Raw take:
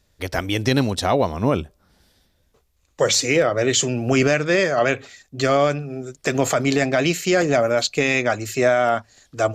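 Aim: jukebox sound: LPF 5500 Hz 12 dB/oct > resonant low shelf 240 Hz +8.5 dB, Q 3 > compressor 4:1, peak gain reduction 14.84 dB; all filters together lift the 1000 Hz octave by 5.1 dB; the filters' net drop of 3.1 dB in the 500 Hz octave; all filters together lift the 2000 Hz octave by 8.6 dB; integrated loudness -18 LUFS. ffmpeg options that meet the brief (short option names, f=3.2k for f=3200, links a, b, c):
-af "lowpass=5.5k,lowshelf=f=240:t=q:w=3:g=8.5,equalizer=f=500:t=o:g=-4.5,equalizer=f=1k:t=o:g=7.5,equalizer=f=2k:t=o:g=9,acompressor=threshold=-25dB:ratio=4,volume=9dB"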